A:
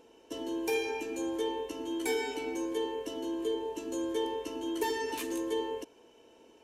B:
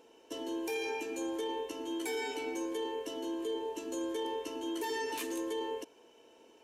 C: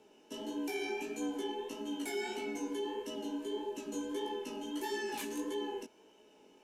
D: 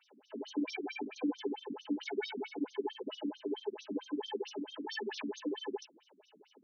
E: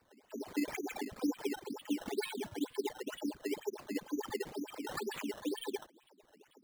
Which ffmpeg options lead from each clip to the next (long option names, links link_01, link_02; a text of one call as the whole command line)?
ffmpeg -i in.wav -af "lowshelf=frequency=170:gain=-11,alimiter=level_in=4dB:limit=-24dB:level=0:latency=1:release=15,volume=-4dB" out.wav
ffmpeg -i in.wav -af "flanger=delay=15:depth=7.2:speed=1.6,afreqshift=-42,volume=1dB" out.wav
ffmpeg -i in.wav -af "afftfilt=real='re*between(b*sr/1024,210*pow(4700/210,0.5+0.5*sin(2*PI*4.5*pts/sr))/1.41,210*pow(4700/210,0.5+0.5*sin(2*PI*4.5*pts/sr))*1.41)':imag='im*between(b*sr/1024,210*pow(4700/210,0.5+0.5*sin(2*PI*4.5*pts/sr))/1.41,210*pow(4700/210,0.5+0.5*sin(2*PI*4.5*pts/sr))*1.41)':win_size=1024:overlap=0.75,volume=7dB" out.wav
ffmpeg -i in.wav -af "acrusher=samples=13:mix=1:aa=0.000001:lfo=1:lforange=13:lforate=2.1" out.wav